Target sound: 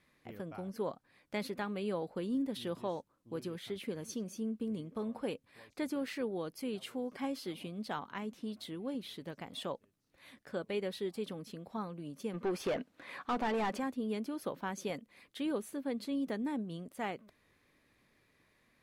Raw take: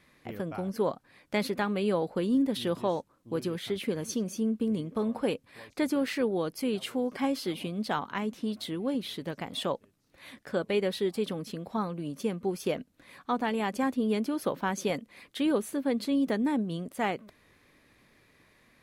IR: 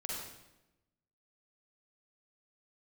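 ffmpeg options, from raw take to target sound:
-filter_complex "[0:a]asplit=3[a][b][c];[a]afade=t=out:st=12.33:d=0.02[d];[b]asplit=2[e][f];[f]highpass=f=720:p=1,volume=24dB,asoftclip=type=tanh:threshold=-16.5dB[g];[e][g]amix=inputs=2:normalize=0,lowpass=f=1.8k:p=1,volume=-6dB,afade=t=in:st=12.33:d=0.02,afade=t=out:st=13.78:d=0.02[h];[c]afade=t=in:st=13.78:d=0.02[i];[d][h][i]amix=inputs=3:normalize=0,volume=-8.5dB"

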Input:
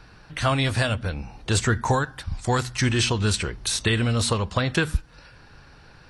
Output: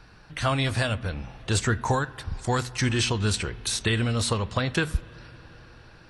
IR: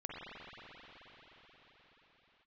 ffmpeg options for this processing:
-filter_complex "[0:a]asplit=2[a][b];[1:a]atrim=start_sample=2205,adelay=28[c];[b][c]afir=irnorm=-1:irlink=0,volume=-20.5dB[d];[a][d]amix=inputs=2:normalize=0,volume=-2.5dB"

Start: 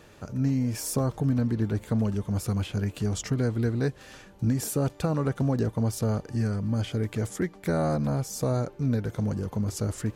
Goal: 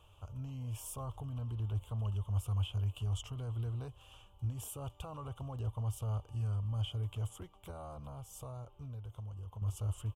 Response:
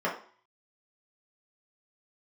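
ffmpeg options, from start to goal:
-filter_complex "[0:a]alimiter=limit=-20dB:level=0:latency=1:release=17,firequalizer=gain_entry='entry(100,0);entry(160,-20);entry(230,-22);entry(710,-9);entry(1100,-3);entry(1800,-29);entry(3000,3);entry(4200,-22);entry(8300,-9)':delay=0.05:min_phase=1,asettb=1/sr,asplit=3[a][b][c];[a]atrim=end=7.704[d];[b]atrim=start=7.7:end=9.62,asetpts=PTS-STARTPTS,afade=t=in:d=0.004:c=qsin,afade=t=out:st=1.916:d=0.004:c=qsin,acompressor=threshold=-41dB:ratio=4[e];[c]atrim=start=9.616[f];[d][e]acrossfade=d=0.004:c1=hsin:c2=qsin[g];[g][f]acrossfade=d=0.004:c1=qsin:c2=hsin,volume=-2.5dB"

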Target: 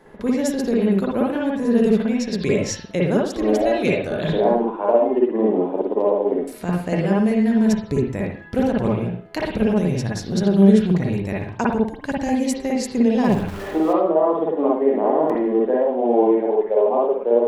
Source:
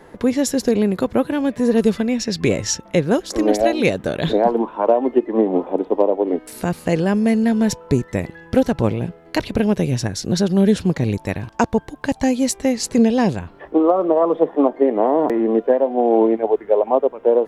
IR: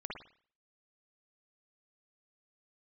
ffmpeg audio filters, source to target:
-filter_complex "[0:a]asettb=1/sr,asplit=3[a][b][c];[a]atrim=end=13.244[d];[b]atrim=start=13.24:end=13.93,asetpts=PTS-STARTPTS,afade=t=in:d=0.004:c=qsin,afade=t=out:st=0.686:d=0.004:c=qsin,aeval=exprs='val(0)+0.5*0.0473*sgn(val(0))':c=same[e];[c]atrim=start=13.926[f];[d][e]acrossfade=d=0.004:c1=hsin:c2=qsin[g];[g][f]acrossfade=d=0.004:c1=qsin:c2=hsin[h];[1:a]atrim=start_sample=2205,afade=t=out:st=0.28:d=0.01,atrim=end_sample=12789[i];[h][i]afir=irnorm=-1:irlink=0,volume=-1.5dB"

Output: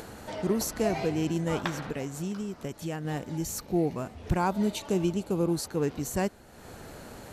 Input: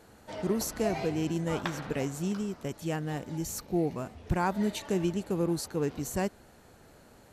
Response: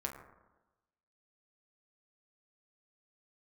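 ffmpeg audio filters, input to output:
-filter_complex "[0:a]asettb=1/sr,asplit=3[a][b][c];[a]atrim=end=1.834[d];[b]atrim=start=1.83:end=3.05,asetpts=PTS-STARTPTS,afade=t=in:d=0.004:c=qsin,afade=t=out:st=1.216:d=0.004:c=qsin,acompressor=threshold=-35dB:ratio=2[e];[c]atrim=start=3.046[f];[d][e]acrossfade=d=0.004:c1=hsin:c2=qsin[g];[g][f]acrossfade=d=0.004:c1=qsin:c2=hsin,asettb=1/sr,asplit=3[h][i][j];[h]atrim=end=4.374[k];[i]atrim=start=4.37:end=5.54,asetpts=PTS-STARTPTS,afade=t=in:d=0.004:c=qsin,afade=t=out:st=1.166:d=0.004:c=qsin,equalizer=f=1.8k:t=o:w=0.34:g=-9[l];[j]atrim=start=5.536[m];[k][l]acrossfade=d=0.004:c1=hsin:c2=qsin[n];[n][m]acrossfade=d=0.004:c1=qsin:c2=hsin,acompressor=mode=upward:threshold=-36dB:ratio=2.5,volume=2dB"

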